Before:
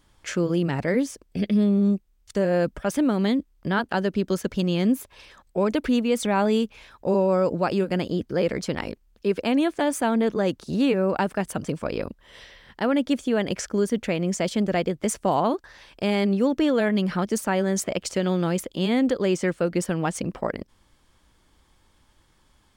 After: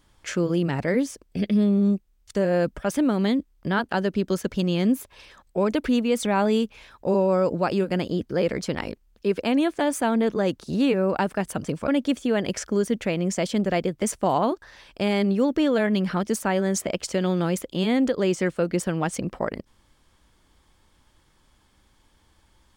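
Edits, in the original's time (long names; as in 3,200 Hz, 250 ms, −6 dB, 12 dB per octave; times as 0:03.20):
0:11.88–0:12.90: remove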